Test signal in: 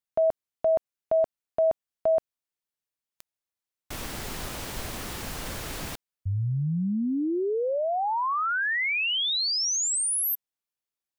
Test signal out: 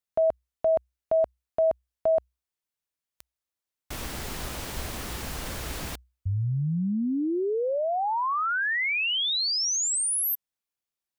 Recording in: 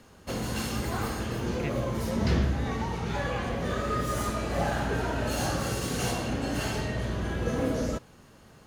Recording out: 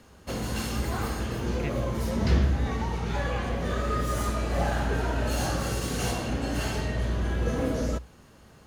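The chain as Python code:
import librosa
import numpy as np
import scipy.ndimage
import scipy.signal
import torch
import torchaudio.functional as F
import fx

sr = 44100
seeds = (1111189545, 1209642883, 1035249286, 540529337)

y = fx.peak_eq(x, sr, hz=62.0, db=9.5, octaves=0.27)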